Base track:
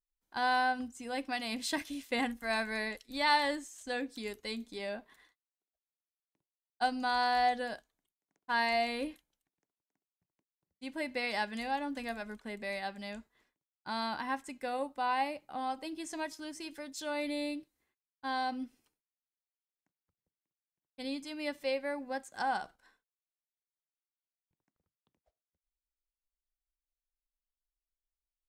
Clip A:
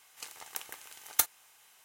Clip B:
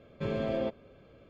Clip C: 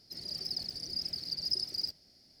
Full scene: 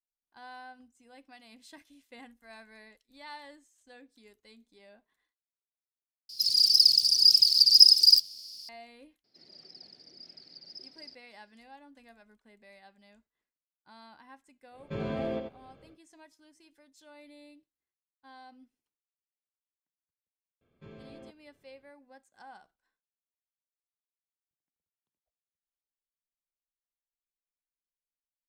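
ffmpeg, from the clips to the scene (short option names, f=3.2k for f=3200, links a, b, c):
-filter_complex "[3:a]asplit=2[a][b];[2:a]asplit=2[c][d];[0:a]volume=-17.5dB[e];[a]aexciter=amount=11.9:drive=7.8:freq=2.7k[f];[b]highpass=240,lowpass=3.5k[g];[c]aecho=1:1:88:0.501[h];[d]equalizer=f=580:t=o:w=0.23:g=-11[i];[e]asplit=2[j][k];[j]atrim=end=6.294[l];[f]atrim=end=2.4,asetpts=PTS-STARTPTS,volume=-8.5dB[m];[k]atrim=start=8.686[n];[g]atrim=end=2.4,asetpts=PTS-STARTPTS,volume=-7dB,afade=t=in:d=0.004:c=hsin,afade=t=out:st=2.396:d=0.004:c=hsin,adelay=9240[o];[h]atrim=end=1.29,asetpts=PTS-STARTPTS,volume=-2.5dB,afade=t=in:d=0.1,afade=t=out:st=1.19:d=0.1,adelay=14700[p];[i]atrim=end=1.29,asetpts=PTS-STARTPTS,volume=-16dB,afade=t=in:d=0.004:c=hsin,afade=t=out:st=1.286:d=0.004:c=hsin,adelay=20610[q];[l][m]acrossfade=d=0.004:c1=hsin:c2=hsin[r];[r][n]acrossfade=d=0.004:c1=hsin:c2=hsin[s];[s][o][p][q]amix=inputs=4:normalize=0"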